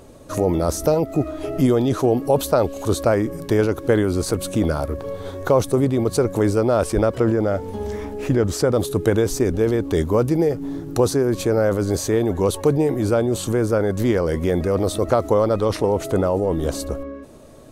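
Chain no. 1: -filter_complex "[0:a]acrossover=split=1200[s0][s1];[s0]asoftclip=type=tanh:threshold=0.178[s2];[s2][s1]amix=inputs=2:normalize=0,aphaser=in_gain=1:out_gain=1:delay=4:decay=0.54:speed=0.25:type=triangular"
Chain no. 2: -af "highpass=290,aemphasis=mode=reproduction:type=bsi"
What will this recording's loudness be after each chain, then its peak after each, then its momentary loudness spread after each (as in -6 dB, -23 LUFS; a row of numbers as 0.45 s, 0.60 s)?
-21.5 LUFS, -20.0 LUFS; -6.5 dBFS, -2.5 dBFS; 6 LU, 8 LU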